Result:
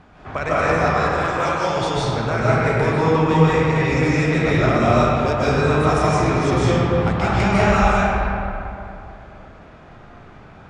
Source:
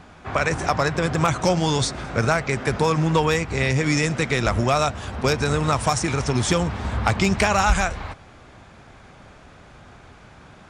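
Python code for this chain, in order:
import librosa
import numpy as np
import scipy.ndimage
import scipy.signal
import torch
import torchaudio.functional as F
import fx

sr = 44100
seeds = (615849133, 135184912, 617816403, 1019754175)

y = fx.lowpass(x, sr, hz=2600.0, slope=6)
y = fx.rider(y, sr, range_db=4, speed_s=2.0)
y = fx.highpass(y, sr, hz=740.0, slope=6, at=(0.75, 1.77))
y = fx.rev_freeverb(y, sr, rt60_s=2.8, hf_ratio=0.5, predelay_ms=110, drr_db=-9.5)
y = y * 10.0 ** (-5.5 / 20.0)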